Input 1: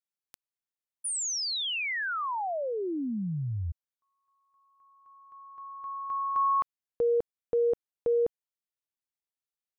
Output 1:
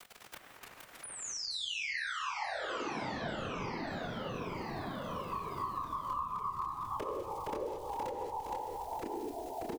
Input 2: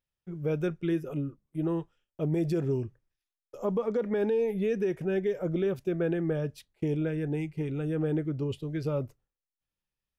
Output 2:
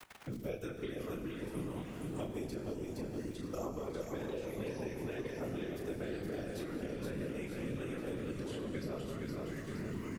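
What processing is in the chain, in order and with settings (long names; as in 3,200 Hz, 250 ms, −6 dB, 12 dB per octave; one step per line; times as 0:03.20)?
fade in at the beginning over 3.06 s
high-shelf EQ 3,800 Hz +11 dB
downward compressor 5 to 1, threshold −42 dBFS
multi-voice chorus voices 4, 0.24 Hz, delay 27 ms, depth 4.6 ms
surface crackle 73 per second −64 dBFS
low-shelf EQ 450 Hz −6 dB
random phases in short frames
repeating echo 467 ms, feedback 39%, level −6 dB
reverb whose tail is shaped and stops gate 240 ms flat, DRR 7 dB
delay with pitch and tempo change per echo 208 ms, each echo −4 semitones, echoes 3, each echo −6 dB
multiband upward and downward compressor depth 100%
level +7 dB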